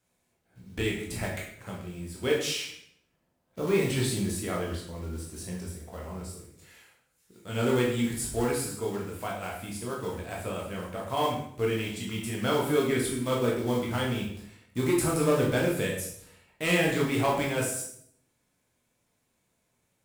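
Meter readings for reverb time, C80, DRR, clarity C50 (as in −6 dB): 0.65 s, 7.0 dB, −3.5 dB, 4.0 dB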